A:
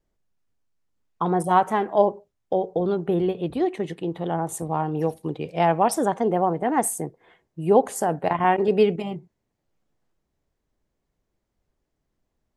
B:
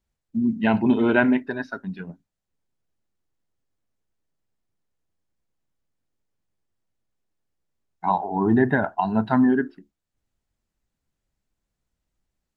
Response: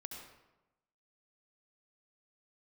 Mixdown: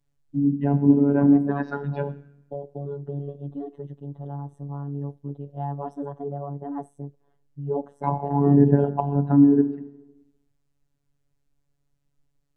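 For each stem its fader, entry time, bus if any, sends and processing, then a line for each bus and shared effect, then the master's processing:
-12.5 dB, 0.00 s, no send, boxcar filter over 19 samples; bass shelf 370 Hz +5.5 dB
-1.0 dB, 0.00 s, send -5.5 dB, low-pass that closes with the level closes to 540 Hz, closed at -19 dBFS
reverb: on, RT60 1.0 s, pre-delay 63 ms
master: robot voice 142 Hz; bass shelf 320 Hz +8.5 dB

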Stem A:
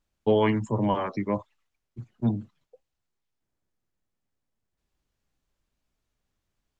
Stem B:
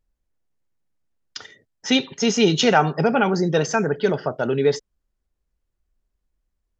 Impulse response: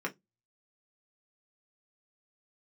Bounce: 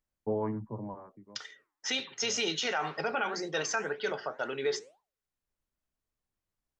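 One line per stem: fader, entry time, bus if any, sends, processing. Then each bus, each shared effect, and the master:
-10.0 dB, 0.00 s, no send, low-pass 1.3 kHz 24 dB/octave; auto duck -18 dB, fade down 0.70 s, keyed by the second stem
0.0 dB, 0.00 s, send -13 dB, high-pass 1.4 kHz 6 dB/octave; flange 2 Hz, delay 3.8 ms, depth 7.2 ms, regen +90%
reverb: on, RT60 0.15 s, pre-delay 3 ms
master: peak limiter -21 dBFS, peak gain reduction 10 dB

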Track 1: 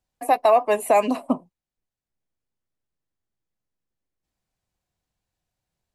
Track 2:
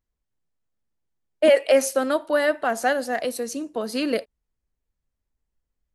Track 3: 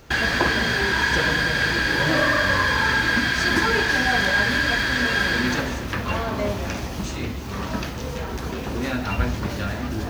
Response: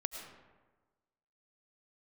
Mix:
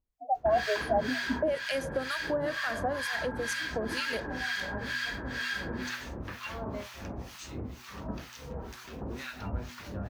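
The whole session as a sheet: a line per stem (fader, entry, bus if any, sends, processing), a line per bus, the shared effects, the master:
-8.5 dB, 0.00 s, no bus, no send, loudest bins only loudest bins 4
-1.0 dB, 0.00 s, bus A, no send, none
-8.0 dB, 0.35 s, bus A, no send, none
bus A: 0.0 dB, harmonic tremolo 2.1 Hz, depth 100%, crossover 1.1 kHz; compression 3:1, threshold -29 dBFS, peak gain reduction 10.5 dB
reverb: none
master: de-hum 122.6 Hz, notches 3

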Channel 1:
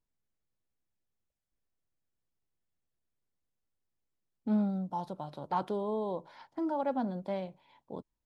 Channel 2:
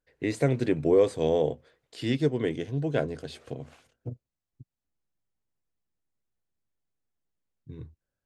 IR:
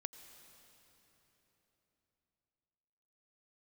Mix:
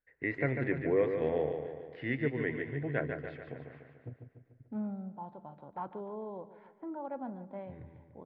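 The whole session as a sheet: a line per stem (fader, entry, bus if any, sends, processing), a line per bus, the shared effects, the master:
-9.5 dB, 0.25 s, send -11.5 dB, echo send -14 dB, low-pass 2.3 kHz 24 dB/octave
+2.0 dB, 0.00 s, send -12.5 dB, echo send -5.5 dB, four-pole ladder low-pass 2.1 kHz, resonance 70%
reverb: on, RT60 3.9 s, pre-delay 80 ms
echo: feedback delay 146 ms, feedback 55%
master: none

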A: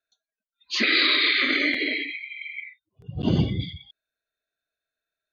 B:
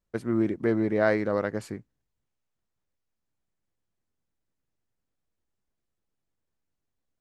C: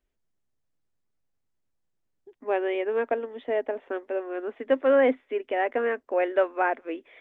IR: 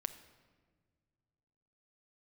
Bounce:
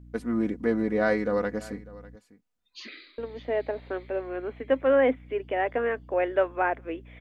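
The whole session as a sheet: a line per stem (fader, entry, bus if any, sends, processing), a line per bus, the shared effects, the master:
-11.5 dB, 2.05 s, no send, echo send -19 dB, compression 6:1, threshold -30 dBFS, peak gain reduction 13 dB; auto duck -18 dB, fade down 0.25 s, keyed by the third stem
-2.0 dB, 0.00 s, no send, echo send -20 dB, comb 4.1 ms, depth 68%
-1.0 dB, 0.00 s, muted 2.16–3.18 s, no send, no echo send, hum 60 Hz, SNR 19 dB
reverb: none
echo: delay 598 ms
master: none

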